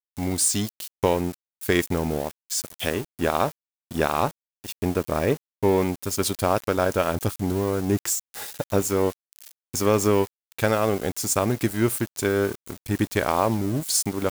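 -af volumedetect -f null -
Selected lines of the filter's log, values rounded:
mean_volume: -24.8 dB
max_volume: -7.2 dB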